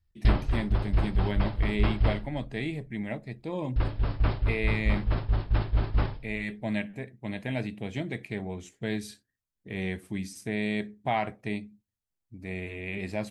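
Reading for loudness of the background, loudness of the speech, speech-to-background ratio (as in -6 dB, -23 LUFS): -29.5 LUFS, -34.0 LUFS, -4.5 dB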